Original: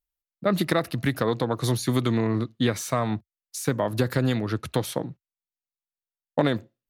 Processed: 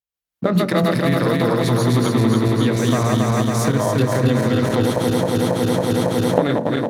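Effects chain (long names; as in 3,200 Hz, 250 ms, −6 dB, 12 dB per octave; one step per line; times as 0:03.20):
feedback delay that plays each chunk backwards 138 ms, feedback 83%, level −1 dB
camcorder AGC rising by 29 dB per second
high-pass filter 74 Hz
high-shelf EQ 6,600 Hz −4.5 dB
leveller curve on the samples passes 1
on a send: convolution reverb RT60 0.45 s, pre-delay 3 ms, DRR 11 dB
on the sum: level −3 dB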